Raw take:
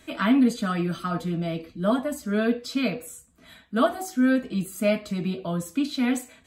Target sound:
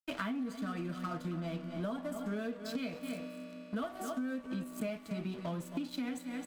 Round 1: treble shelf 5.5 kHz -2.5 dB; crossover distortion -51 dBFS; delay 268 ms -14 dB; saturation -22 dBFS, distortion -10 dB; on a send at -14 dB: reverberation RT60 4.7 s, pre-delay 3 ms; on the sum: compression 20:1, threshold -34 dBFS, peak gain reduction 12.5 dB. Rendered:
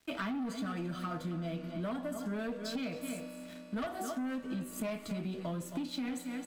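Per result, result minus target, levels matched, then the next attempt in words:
saturation: distortion +12 dB; crossover distortion: distortion -9 dB
treble shelf 5.5 kHz -2.5 dB; crossover distortion -51 dBFS; delay 268 ms -14 dB; saturation -12.5 dBFS, distortion -22 dB; on a send at -14 dB: reverberation RT60 4.7 s, pre-delay 3 ms; on the sum: compression 20:1, threshold -34 dBFS, peak gain reduction 18 dB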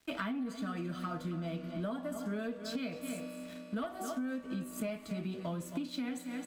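crossover distortion: distortion -9 dB
treble shelf 5.5 kHz -2.5 dB; crossover distortion -41 dBFS; delay 268 ms -14 dB; saturation -12.5 dBFS, distortion -22 dB; on a send at -14 dB: reverberation RT60 4.7 s, pre-delay 3 ms; on the sum: compression 20:1, threshold -34 dBFS, peak gain reduction 18 dB

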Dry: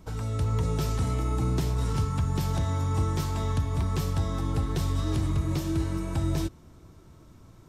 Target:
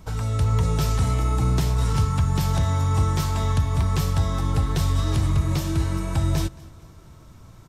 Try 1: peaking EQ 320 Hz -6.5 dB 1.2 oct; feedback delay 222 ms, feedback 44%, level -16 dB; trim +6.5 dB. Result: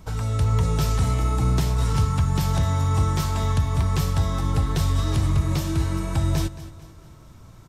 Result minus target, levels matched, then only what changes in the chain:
echo-to-direct +7 dB
change: feedback delay 222 ms, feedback 44%, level -23 dB

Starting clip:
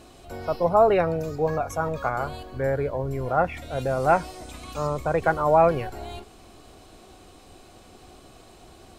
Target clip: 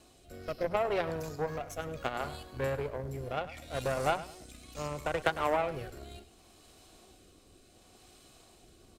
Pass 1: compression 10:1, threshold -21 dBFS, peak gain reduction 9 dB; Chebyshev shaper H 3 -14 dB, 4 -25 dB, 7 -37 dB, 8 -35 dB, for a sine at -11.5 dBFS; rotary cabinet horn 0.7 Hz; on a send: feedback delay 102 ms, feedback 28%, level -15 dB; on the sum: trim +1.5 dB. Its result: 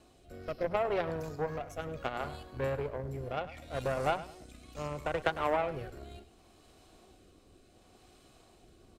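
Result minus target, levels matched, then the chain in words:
8 kHz band -6.0 dB
compression 10:1, threshold -21 dBFS, peak gain reduction 9 dB; treble shelf 3.2 kHz +8 dB; Chebyshev shaper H 3 -14 dB, 4 -25 dB, 7 -37 dB, 8 -35 dB, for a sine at -11.5 dBFS; rotary cabinet horn 0.7 Hz; on a send: feedback delay 102 ms, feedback 28%, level -15 dB; on the sum: trim +1.5 dB

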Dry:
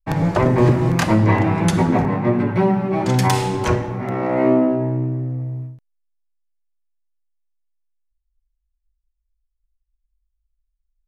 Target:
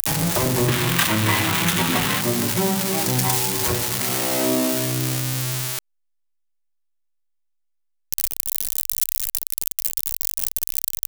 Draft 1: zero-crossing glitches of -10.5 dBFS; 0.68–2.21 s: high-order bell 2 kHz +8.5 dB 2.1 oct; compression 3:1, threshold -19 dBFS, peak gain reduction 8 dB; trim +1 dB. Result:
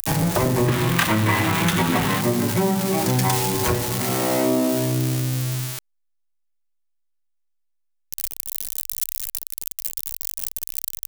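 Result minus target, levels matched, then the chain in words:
zero-crossing glitches: distortion -8 dB
zero-crossing glitches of -2.5 dBFS; 0.68–2.21 s: high-order bell 2 kHz +8.5 dB 2.1 oct; compression 3:1, threshold -19 dBFS, peak gain reduction 10 dB; trim +1 dB

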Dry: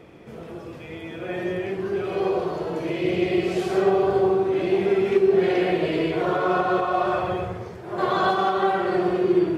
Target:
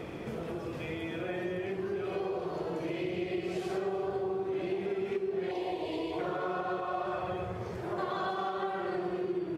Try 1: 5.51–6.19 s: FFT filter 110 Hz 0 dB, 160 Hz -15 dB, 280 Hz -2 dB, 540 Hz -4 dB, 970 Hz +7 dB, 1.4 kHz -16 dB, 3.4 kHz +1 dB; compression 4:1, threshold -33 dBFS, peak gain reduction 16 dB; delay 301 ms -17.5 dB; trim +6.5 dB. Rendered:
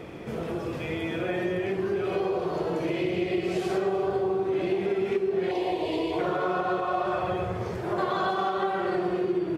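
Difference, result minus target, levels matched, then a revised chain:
compression: peak gain reduction -7 dB
5.51–6.19 s: FFT filter 110 Hz 0 dB, 160 Hz -15 dB, 280 Hz -2 dB, 540 Hz -4 dB, 970 Hz +7 dB, 1.4 kHz -16 dB, 3.4 kHz +1 dB; compression 4:1, threshold -42 dBFS, peak gain reduction 22.5 dB; delay 301 ms -17.5 dB; trim +6.5 dB

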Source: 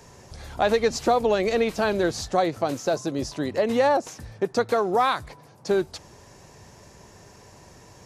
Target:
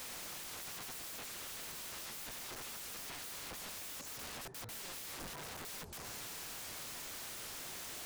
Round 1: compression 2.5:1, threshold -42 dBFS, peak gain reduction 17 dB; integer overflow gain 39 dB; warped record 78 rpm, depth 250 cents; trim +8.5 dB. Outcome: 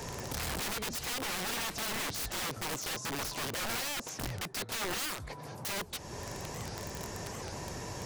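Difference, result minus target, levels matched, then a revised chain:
integer overflow: distortion -27 dB
compression 2.5:1, threshold -42 dBFS, peak gain reduction 17 dB; integer overflow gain 50 dB; warped record 78 rpm, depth 250 cents; trim +8.5 dB

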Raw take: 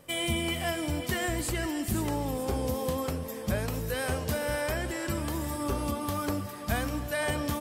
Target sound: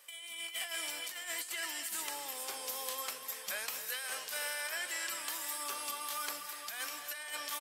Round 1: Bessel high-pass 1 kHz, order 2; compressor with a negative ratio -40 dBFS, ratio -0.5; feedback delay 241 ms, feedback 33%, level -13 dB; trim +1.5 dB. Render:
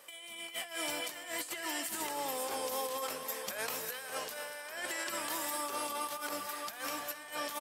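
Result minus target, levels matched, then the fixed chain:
1 kHz band +5.0 dB
Bessel high-pass 2 kHz, order 2; compressor with a negative ratio -40 dBFS, ratio -0.5; feedback delay 241 ms, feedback 33%, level -13 dB; trim +1.5 dB

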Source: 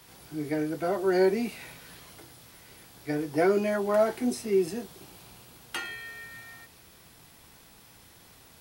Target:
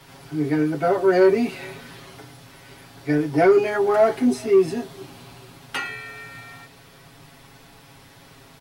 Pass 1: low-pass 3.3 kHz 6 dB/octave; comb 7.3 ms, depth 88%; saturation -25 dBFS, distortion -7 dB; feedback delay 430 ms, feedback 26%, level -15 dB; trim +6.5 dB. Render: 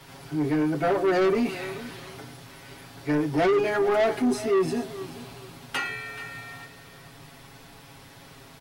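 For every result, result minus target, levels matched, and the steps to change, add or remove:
saturation: distortion +13 dB; echo-to-direct +11.5 dB
change: saturation -13 dBFS, distortion -21 dB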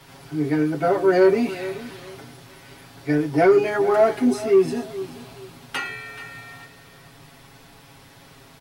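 echo-to-direct +11.5 dB
change: feedback delay 430 ms, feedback 26%, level -26.5 dB

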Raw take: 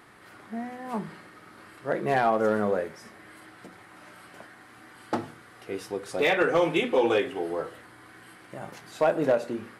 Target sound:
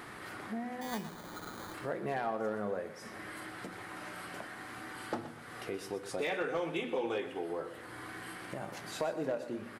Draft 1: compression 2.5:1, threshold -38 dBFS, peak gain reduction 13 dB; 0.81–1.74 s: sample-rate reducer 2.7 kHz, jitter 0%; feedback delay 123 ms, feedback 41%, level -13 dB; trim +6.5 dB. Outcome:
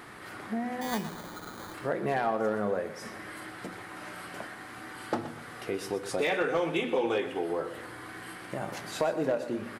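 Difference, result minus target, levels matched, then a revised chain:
compression: peak gain reduction -6.5 dB
compression 2.5:1, threshold -48.5 dBFS, peak gain reduction 19.5 dB; 0.81–1.74 s: sample-rate reducer 2.7 kHz, jitter 0%; feedback delay 123 ms, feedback 41%, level -13 dB; trim +6.5 dB

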